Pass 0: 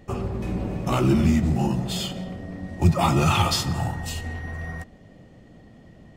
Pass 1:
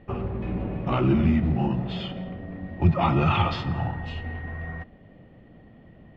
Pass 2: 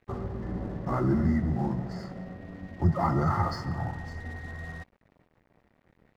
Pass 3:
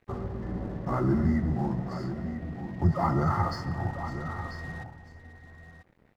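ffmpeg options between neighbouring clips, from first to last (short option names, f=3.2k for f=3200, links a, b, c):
-af "lowpass=f=3.1k:w=0.5412,lowpass=f=3.1k:w=1.3066,volume=-1.5dB"
-af "highshelf=f=4k:g=11,afftfilt=real='re*(1-between(b*sr/4096,2100,4400))':imag='im*(1-between(b*sr/4096,2100,4400))':win_size=4096:overlap=0.75,aeval=exprs='sgn(val(0))*max(abs(val(0))-0.00422,0)':c=same,volume=-4dB"
-af "aecho=1:1:992:0.299"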